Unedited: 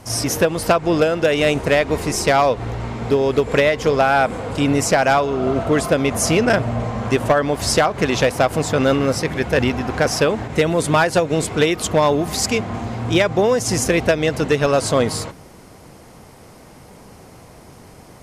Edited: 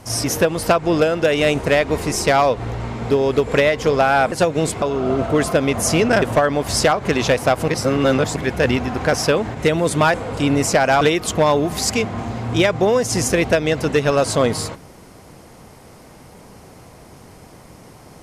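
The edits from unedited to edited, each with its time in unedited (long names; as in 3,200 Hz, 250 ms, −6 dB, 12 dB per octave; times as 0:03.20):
0:04.32–0:05.19: swap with 0:11.07–0:11.57
0:06.59–0:07.15: remove
0:08.61–0:09.29: reverse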